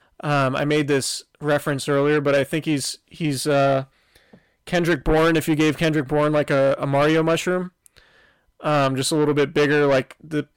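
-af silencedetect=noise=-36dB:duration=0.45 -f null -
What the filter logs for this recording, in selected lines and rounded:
silence_start: 7.98
silence_end: 8.61 | silence_duration: 0.63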